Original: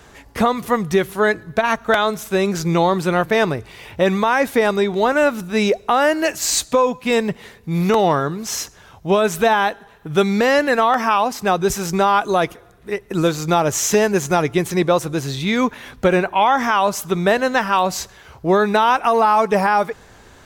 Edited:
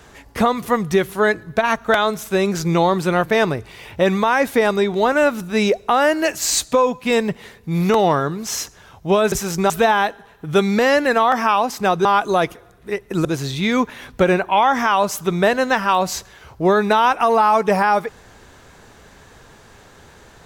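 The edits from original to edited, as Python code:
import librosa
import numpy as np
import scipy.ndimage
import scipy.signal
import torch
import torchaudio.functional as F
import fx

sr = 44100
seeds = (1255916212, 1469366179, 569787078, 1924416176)

y = fx.edit(x, sr, fx.move(start_s=11.67, length_s=0.38, to_s=9.32),
    fx.cut(start_s=13.25, length_s=1.84), tone=tone)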